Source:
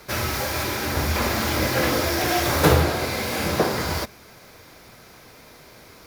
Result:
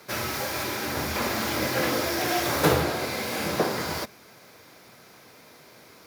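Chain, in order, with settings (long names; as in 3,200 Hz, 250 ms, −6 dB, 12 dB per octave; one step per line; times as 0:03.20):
high-pass filter 130 Hz 12 dB per octave
level −3.5 dB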